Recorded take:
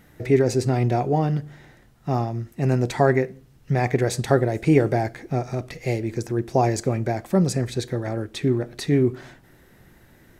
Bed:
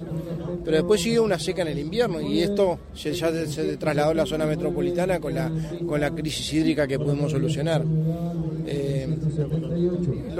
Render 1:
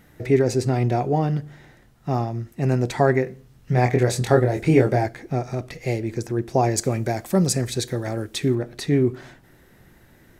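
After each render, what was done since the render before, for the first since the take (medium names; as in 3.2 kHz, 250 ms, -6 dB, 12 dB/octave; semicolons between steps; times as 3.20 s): 3.24–5.06 s: doubling 24 ms -3.5 dB; 6.77–8.55 s: treble shelf 4.1 kHz +10 dB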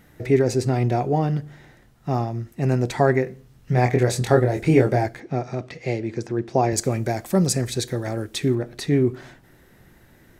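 5.20–6.73 s: band-pass 110–5600 Hz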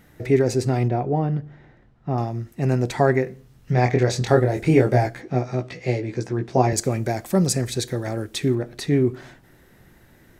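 0.88–2.18 s: tape spacing loss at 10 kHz 26 dB; 3.72–4.28 s: resonant high shelf 7.6 kHz -8.5 dB, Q 1.5; 4.91–6.73 s: doubling 16 ms -3.5 dB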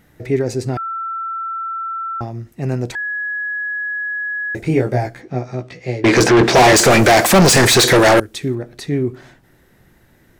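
0.77–2.21 s: bleep 1.34 kHz -21.5 dBFS; 2.95–4.55 s: bleep 1.68 kHz -20 dBFS; 6.04–8.20 s: overdrive pedal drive 39 dB, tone 5.6 kHz, clips at -2 dBFS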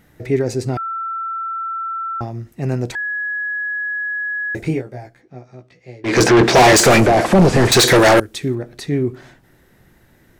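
0.65–1.58 s: band-stop 1.7 kHz; 4.66–6.21 s: dip -14.5 dB, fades 0.17 s; 7.00–7.72 s: one-bit delta coder 64 kbps, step -33.5 dBFS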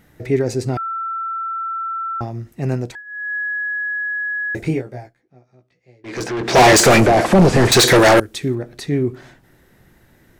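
2.73–3.35 s: dip -16.5 dB, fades 0.30 s; 4.99–6.59 s: dip -13 dB, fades 0.15 s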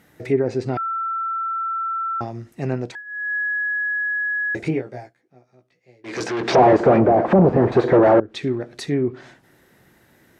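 low-pass that closes with the level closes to 800 Hz, closed at -11 dBFS; high-pass 200 Hz 6 dB/octave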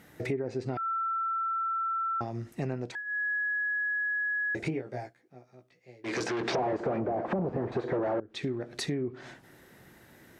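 compression 5:1, threshold -30 dBFS, peak gain reduction 18 dB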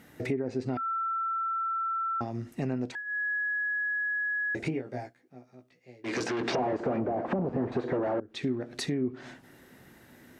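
small resonant body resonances 250/2800 Hz, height 8 dB, ringing for 95 ms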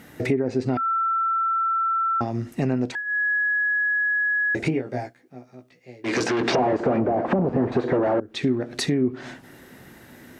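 trim +8 dB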